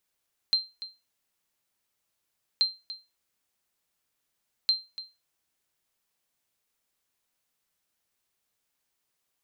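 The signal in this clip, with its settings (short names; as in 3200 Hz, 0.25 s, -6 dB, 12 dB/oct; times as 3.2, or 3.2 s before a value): sonar ping 4140 Hz, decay 0.25 s, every 2.08 s, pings 3, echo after 0.29 s, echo -15 dB -15.5 dBFS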